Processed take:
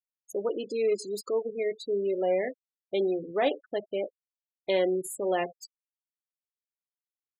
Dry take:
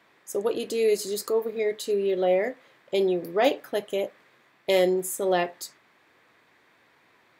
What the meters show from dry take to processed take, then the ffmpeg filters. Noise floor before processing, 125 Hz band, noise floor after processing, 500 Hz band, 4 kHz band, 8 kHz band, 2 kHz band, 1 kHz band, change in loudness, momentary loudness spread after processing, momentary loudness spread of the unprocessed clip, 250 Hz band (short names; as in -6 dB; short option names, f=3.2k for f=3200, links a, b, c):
-62 dBFS, -6.0 dB, under -85 dBFS, -3.5 dB, -6.5 dB, -8.0 dB, -5.0 dB, -4.5 dB, -4.0 dB, 9 LU, 9 LU, -4.0 dB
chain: -af "aeval=exprs='0.376*(cos(1*acos(clip(val(0)/0.376,-1,1)))-cos(1*PI/2))+0.0168*(cos(2*acos(clip(val(0)/0.376,-1,1)))-cos(2*PI/2))+0.0188*(cos(5*acos(clip(val(0)/0.376,-1,1)))-cos(5*PI/2))+0.00473*(cos(6*acos(clip(val(0)/0.376,-1,1)))-cos(6*PI/2))+0.00531*(cos(8*acos(clip(val(0)/0.376,-1,1)))-cos(8*PI/2))':c=same,bandreject=f=60:t=h:w=6,bandreject=f=120:t=h:w=6,bandreject=f=180:t=h:w=6,afftfilt=real='re*gte(hypot(re,im),0.0447)':imag='im*gte(hypot(re,im),0.0447)':win_size=1024:overlap=0.75,volume=-5dB"